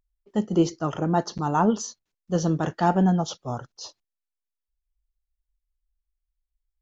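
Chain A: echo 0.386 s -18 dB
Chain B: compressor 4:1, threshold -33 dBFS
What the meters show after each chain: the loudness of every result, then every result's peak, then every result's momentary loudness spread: -25.0, -37.0 LUFS; -7.5, -20.5 dBFS; 14, 7 LU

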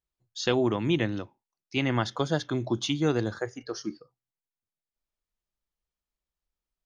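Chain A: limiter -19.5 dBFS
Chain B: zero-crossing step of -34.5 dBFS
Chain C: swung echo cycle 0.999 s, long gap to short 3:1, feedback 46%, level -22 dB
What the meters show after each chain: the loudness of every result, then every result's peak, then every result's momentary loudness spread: -32.0, -28.0, -29.0 LUFS; -19.5, -10.5, -11.0 dBFS; 9, 18, 13 LU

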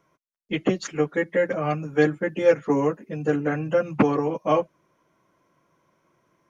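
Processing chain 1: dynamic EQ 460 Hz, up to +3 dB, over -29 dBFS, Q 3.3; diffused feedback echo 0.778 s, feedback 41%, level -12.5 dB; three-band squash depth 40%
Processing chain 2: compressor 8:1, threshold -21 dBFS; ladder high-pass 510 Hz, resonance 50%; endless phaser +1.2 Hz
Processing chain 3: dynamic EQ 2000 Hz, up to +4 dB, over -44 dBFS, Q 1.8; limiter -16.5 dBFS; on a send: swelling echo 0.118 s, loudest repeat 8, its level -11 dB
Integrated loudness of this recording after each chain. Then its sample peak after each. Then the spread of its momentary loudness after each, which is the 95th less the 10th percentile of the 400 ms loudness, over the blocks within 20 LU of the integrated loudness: -23.0, -39.5, -25.5 LUFS; -6.0, -20.0, -10.5 dBFS; 13, 10, 6 LU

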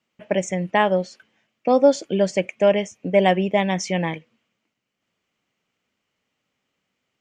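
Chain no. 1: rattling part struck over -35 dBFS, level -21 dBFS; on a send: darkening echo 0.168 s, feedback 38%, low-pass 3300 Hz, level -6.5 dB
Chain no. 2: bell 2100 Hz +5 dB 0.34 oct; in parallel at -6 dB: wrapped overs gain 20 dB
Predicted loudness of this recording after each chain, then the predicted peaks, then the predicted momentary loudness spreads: -20.0, -20.0 LUFS; -2.5, -3.5 dBFS; 12, 8 LU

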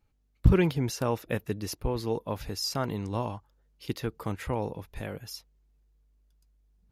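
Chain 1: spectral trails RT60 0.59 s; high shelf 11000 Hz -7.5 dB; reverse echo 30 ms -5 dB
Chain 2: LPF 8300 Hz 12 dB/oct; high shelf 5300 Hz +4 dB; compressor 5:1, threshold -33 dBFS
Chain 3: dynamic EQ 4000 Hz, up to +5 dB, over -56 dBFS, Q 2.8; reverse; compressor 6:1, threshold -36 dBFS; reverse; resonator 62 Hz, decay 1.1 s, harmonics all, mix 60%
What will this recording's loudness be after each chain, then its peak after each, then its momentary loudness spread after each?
-28.0, -38.5, -47.5 LUFS; -7.5, -22.5, -31.5 dBFS; 14, 7, 7 LU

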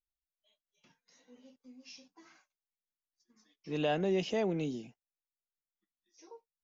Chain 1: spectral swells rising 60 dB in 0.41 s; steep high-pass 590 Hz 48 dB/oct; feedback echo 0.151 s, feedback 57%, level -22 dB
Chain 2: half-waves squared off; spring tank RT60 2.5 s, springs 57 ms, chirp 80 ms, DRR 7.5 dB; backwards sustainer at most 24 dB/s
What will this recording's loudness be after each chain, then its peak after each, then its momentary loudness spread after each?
-39.5, -28.5 LUFS; -22.5, -16.5 dBFS; 23, 23 LU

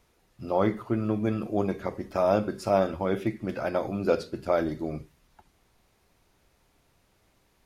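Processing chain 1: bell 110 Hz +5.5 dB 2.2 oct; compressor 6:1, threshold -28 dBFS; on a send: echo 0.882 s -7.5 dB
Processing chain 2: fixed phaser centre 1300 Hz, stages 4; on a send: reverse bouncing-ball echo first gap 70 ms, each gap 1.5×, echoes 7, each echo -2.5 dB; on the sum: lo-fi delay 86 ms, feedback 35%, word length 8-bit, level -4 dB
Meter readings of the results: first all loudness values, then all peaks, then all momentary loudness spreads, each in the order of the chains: -34.0, -29.5 LUFS; -15.5, -14.0 dBFS; 10, 18 LU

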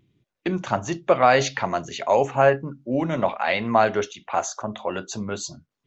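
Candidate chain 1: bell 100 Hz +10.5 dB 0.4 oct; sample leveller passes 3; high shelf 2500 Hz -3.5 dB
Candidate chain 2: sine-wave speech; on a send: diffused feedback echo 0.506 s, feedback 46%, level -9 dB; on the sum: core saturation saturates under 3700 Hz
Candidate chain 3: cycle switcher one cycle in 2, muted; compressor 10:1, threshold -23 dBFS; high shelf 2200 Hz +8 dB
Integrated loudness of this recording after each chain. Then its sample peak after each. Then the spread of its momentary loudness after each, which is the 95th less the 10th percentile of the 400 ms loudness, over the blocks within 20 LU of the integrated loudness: -15.5, -26.0, -29.0 LUFS; -4.0, -6.0, -3.0 dBFS; 8, 12, 6 LU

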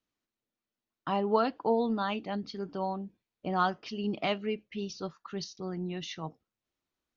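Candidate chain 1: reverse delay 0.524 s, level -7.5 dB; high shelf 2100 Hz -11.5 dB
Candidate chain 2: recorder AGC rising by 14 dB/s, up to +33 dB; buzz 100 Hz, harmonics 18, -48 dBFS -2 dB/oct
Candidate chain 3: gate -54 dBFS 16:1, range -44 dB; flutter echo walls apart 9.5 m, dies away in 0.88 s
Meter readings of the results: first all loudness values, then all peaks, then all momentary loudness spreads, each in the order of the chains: -33.5, -30.5, -31.0 LUFS; -14.5, -12.0, -12.5 dBFS; 14, 20, 11 LU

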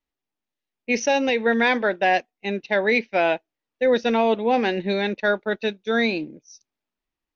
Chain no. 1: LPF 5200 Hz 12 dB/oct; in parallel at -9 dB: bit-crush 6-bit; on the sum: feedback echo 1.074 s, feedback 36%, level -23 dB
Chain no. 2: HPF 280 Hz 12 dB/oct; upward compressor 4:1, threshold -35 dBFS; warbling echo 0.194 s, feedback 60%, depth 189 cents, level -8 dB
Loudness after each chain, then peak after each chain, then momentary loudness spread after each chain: -19.5, -22.0 LUFS; -6.5, -7.0 dBFS; 8, 11 LU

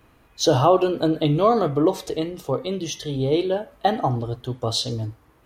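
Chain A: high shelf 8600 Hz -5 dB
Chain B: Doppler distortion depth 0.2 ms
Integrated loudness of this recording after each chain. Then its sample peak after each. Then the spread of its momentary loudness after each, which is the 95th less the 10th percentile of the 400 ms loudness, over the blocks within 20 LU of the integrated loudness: -22.5, -22.5 LUFS; -5.0, -5.0 dBFS; 10, 10 LU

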